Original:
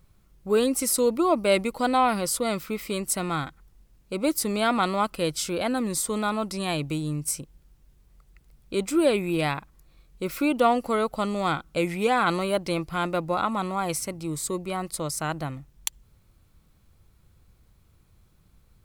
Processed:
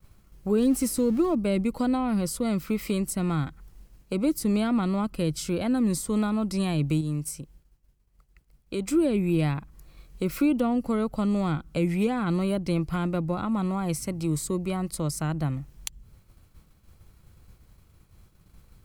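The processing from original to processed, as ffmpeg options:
-filter_complex "[0:a]asettb=1/sr,asplit=3[s0][s1][s2];[s0]atrim=end=0.584[s3];[s1]atrim=start=0.58:end=1.35,asetpts=PTS-STARTPTS,afade=t=in:d=0.004:c=qsin,afade=t=out:st=0.766:d=0.004:c=qsin,aeval=exprs='val(0)+0.5*0.0237*sgn(val(0))':c=same[s4];[s2]atrim=start=1.346[s5];[s3][s4]acrossfade=d=0.004:c1=hsin:c2=qsin[s6];[s6][s5]acrossfade=d=0.004:c1=qsin:c2=hsin,asplit=3[s7][s8][s9];[s7]atrim=end=7.012[s10];[s8]atrim=start=7.008:end=8.872,asetpts=PTS-STARTPTS,volume=0.501[s11];[s9]atrim=start=8.868[s12];[s10][s11]acrossfade=d=0.004:c1=hsin:c2=hsin[s13];[s13][s12]acrossfade=d=0.004:c1=hsin:c2=hsin,agate=range=0.0224:threshold=0.002:ratio=3:detection=peak,bandreject=f=3600:w=18,acrossover=split=280[s14][s15];[s15]acompressor=threshold=0.00891:ratio=4[s16];[s14][s16]amix=inputs=2:normalize=0,volume=2.24"

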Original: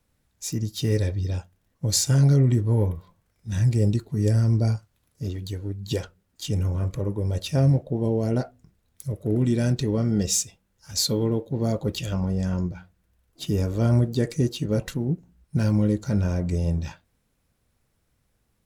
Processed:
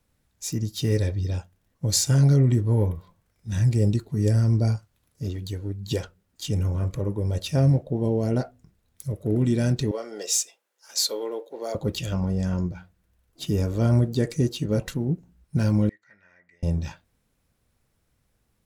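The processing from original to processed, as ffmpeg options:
-filter_complex "[0:a]asettb=1/sr,asplit=3[s0][s1][s2];[s0]atrim=end=9.914[s3];[s1]atrim=start=9.91:end=11.75,asetpts=PTS-STARTPTS,afade=t=in:d=0.004:c=qsin,afade=t=out:st=1.836:d=0.004:c=qsin,highpass=f=430:w=0.5412,highpass=f=430:w=1.3066[s4];[s2]atrim=start=11.746[s5];[s3][s4]acrossfade=d=0.004:c1=hsin:c2=qsin[s6];[s6][s5]acrossfade=d=0.004:c1=qsin:c2=hsin,asettb=1/sr,asplit=3[s7][s8][s9];[s7]atrim=end=15.894[s10];[s8]atrim=start=15.89:end=16.63,asetpts=PTS-STARTPTS,afade=t=in:d=0.004:c=qsin,afade=t=out:st=0.736:d=0.004:c=qsin,bandpass=f=1900:t=q:w=13[s11];[s9]atrim=start=16.626[s12];[s10][s11]acrossfade=d=0.004:c1=hsin:c2=qsin[s13];[s13][s12]acrossfade=d=0.004:c1=qsin:c2=hsin"

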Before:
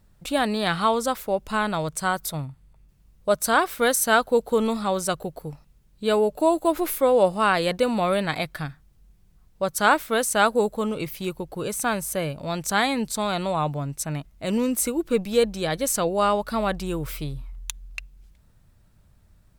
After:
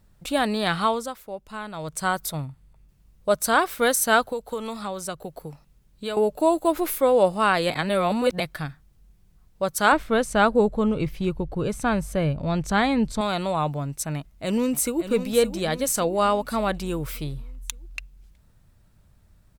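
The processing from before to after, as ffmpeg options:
-filter_complex "[0:a]asettb=1/sr,asplit=3[s0][s1][s2];[s0]atrim=end=4.244[s3];[s1]atrim=start=4.24:end=6.17,asetpts=PTS-STARTPTS,afade=t=in:d=0.004:c=qsin,afade=t=out:st=1.926:d=0.004:c=qsin,acrossover=split=120|570[s4][s5][s6];[s4]acompressor=threshold=0.00282:ratio=4[s7];[s5]acompressor=threshold=0.0178:ratio=4[s8];[s6]acompressor=threshold=0.0251:ratio=4[s9];[s7][s8][s9]amix=inputs=3:normalize=0[s10];[s2]atrim=start=6.166[s11];[s3][s10]acrossfade=d=0.004:c1=hsin:c2=qsin[s12];[s12][s11]acrossfade=d=0.004:c1=qsin:c2=hsin,asettb=1/sr,asplit=3[s13][s14][s15];[s13]atrim=end=9.924[s16];[s14]atrim=start=9.92:end=13.21,asetpts=PTS-STARTPTS,afade=t=in:d=0.004:c=qsin,afade=t=out:st=3.286:d=0.004:c=qsin,aemphasis=mode=reproduction:type=bsi[s17];[s15]atrim=start=13.206[s18];[s16][s17]acrossfade=d=0.004:c1=hsin:c2=qsin[s19];[s19][s18]acrossfade=d=0.004:c1=qsin:c2=hsin,asplit=2[s20][s21];[s21]afade=t=in:st=14.16:d=0.01,afade=t=out:st=15.11:d=0.01,aecho=0:1:570|1140|1710|2280|2850:0.316228|0.158114|0.0790569|0.0395285|0.0197642[s22];[s20][s22]amix=inputs=2:normalize=0,asplit=5[s23][s24][s25][s26][s27];[s23]atrim=end=1.13,asetpts=PTS-STARTPTS,afade=t=out:st=0.82:d=0.31:silence=0.298538[s28];[s24]atrim=start=1.13:end=1.73,asetpts=PTS-STARTPTS,volume=0.299[s29];[s25]atrim=start=1.73:end=7.702,asetpts=PTS-STARTPTS,afade=t=in:d=0.31:silence=0.298538[s30];[s26]atrim=start=7.698:end=8.402,asetpts=PTS-STARTPTS,areverse[s31];[s27]atrim=start=8.398[s32];[s28][s29][s30]concat=n=3:v=0:a=1[s33];[s33][s31]acrossfade=d=0.004:c1=hsin:c2=hsin[s34];[s34][s32]acrossfade=d=0.004:c1=hsin:c2=hsin"

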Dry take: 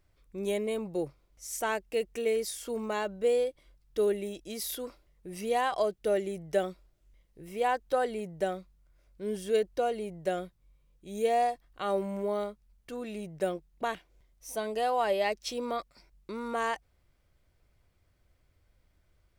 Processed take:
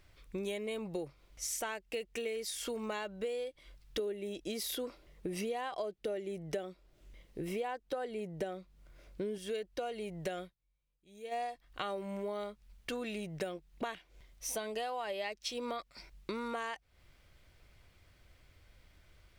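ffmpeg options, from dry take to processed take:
-filter_complex "[0:a]asettb=1/sr,asplit=3[s0][s1][s2];[s0]atrim=end=3.994[s3];[s1]atrim=start=3.99:end=9.38,asetpts=PTS-STARTPTS,afade=t=in:d=0.004:c=qsin,afade=t=out:st=5.386:d=0.004:c=qsin,equalizer=f=340:t=o:w=2.5:g=7[s4];[s2]atrim=start=9.376[s5];[s3][s4]acrossfade=d=0.004:c1=hsin:c2=qsin[s6];[s6][s5]acrossfade=d=0.004:c1=qsin:c2=hsin,asplit=3[s7][s8][s9];[s7]atrim=end=10.55,asetpts=PTS-STARTPTS,afade=t=out:st=10.41:d=0.14:silence=0.0630957[s10];[s8]atrim=start=10.55:end=11.31,asetpts=PTS-STARTPTS,volume=0.0631[s11];[s9]atrim=start=11.31,asetpts=PTS-STARTPTS,afade=t=in:d=0.14:silence=0.0630957[s12];[s10][s11][s12]concat=n=3:v=0:a=1,equalizer=f=2900:w=0.6:g=7,acompressor=threshold=0.00891:ratio=10,volume=1.88"

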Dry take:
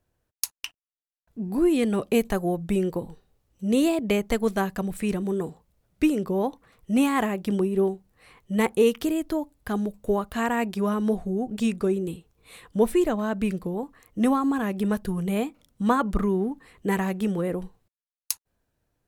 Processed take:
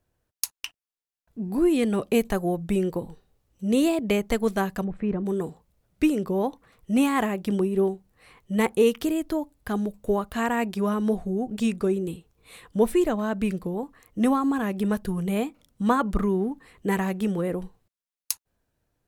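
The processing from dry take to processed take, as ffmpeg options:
-filter_complex "[0:a]asettb=1/sr,asplit=3[s0][s1][s2];[s0]atrim=end=4.844[s3];[s1]atrim=start=4.84:end=5.26,asetpts=PTS-STARTPTS,afade=t=in:d=0.004:c=qsin,afade=t=out:st=0.416:d=0.004:c=qsin,lowpass=1400[s4];[s2]atrim=start=5.256[s5];[s3][s4]acrossfade=d=0.004:c1=hsin:c2=qsin[s6];[s6][s5]acrossfade=d=0.004:c1=qsin:c2=hsin"

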